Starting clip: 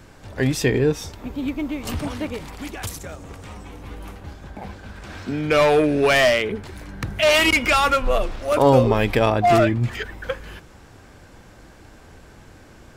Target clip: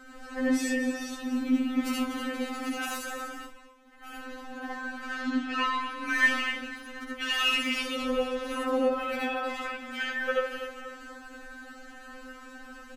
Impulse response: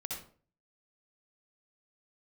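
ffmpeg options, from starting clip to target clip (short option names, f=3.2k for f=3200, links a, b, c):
-filter_complex "[0:a]equalizer=f=78:t=o:w=0.54:g=10.5,acompressor=threshold=-25dB:ratio=6,aecho=1:1:241|482|723|964|1205:0.282|0.144|0.0733|0.0374|0.0191,asettb=1/sr,asplit=3[a][b][c];[a]atrim=end=6.604[d];[b]atrim=start=6.6:end=7.21,asetpts=PTS-STARTPTS,afade=t=in:d=0.004:c=qsin,afade=t=out:st=0.606:d=0.004:c=qsin,acrossover=split=440[e][f];[f]acompressor=threshold=-42dB:ratio=6[g];[e][g]amix=inputs=2:normalize=0[h];[c]atrim=start=7.206[i];[d][h]acrossfade=d=0.004:c1=hsin:c2=qsin[j];[j][i]acrossfade=d=0.004:c1=qsin:c2=hsin,equalizer=f=1.4k:t=o:w=0.46:g=12,asettb=1/sr,asplit=3[k][l][m];[k]atrim=end=3.394[n];[l]atrim=start=3.39:end=4.04,asetpts=PTS-STARTPTS,afade=t=in:d=0.004:c=qsin,afade=t=out:st=0.646:d=0.004:c=qsin,agate=range=-33dB:threshold=-21dB:ratio=3:detection=peak[o];[m]atrim=start=4.036[p];[n][o]acrossfade=d=0.004:c1=hsin:c2=qsin[q];[q][p]acrossfade=d=0.004:c1=qsin:c2=hsin,asettb=1/sr,asplit=3[r][s][t];[r]atrim=end=5.154[u];[s]atrim=start=5.15:end=5.83,asetpts=PTS-STARTPTS,afade=t=in:d=0.004:c=qsin,afade=t=out:st=0.676:d=0.004:c=qsin,lowpass=8.3k[v];[t]atrim=start=5.826[w];[u][v]acrossfade=d=0.004:c1=hsin:c2=qsin[x];[x][w]acrossfade=d=0.004:c1=qsin:c2=hsin[y];[1:a]atrim=start_sample=2205,asetrate=40572,aresample=44100[z];[y][z]afir=irnorm=-1:irlink=0,afftfilt=real='re*3.46*eq(mod(b,12),0)':imag='im*3.46*eq(mod(b,12),0)':win_size=2048:overlap=0.75"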